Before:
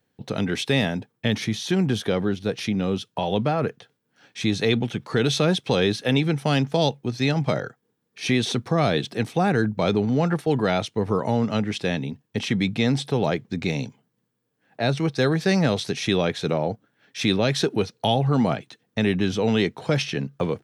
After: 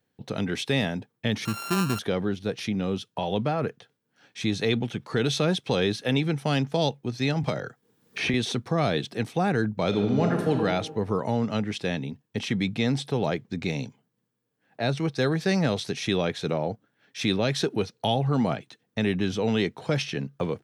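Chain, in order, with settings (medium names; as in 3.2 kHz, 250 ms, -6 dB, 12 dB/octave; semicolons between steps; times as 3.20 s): 1.45–1.99 s: sorted samples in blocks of 32 samples; 7.43–8.34 s: three bands compressed up and down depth 100%; 9.87–10.53 s: reverb throw, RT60 1.4 s, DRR 2.5 dB; trim -3.5 dB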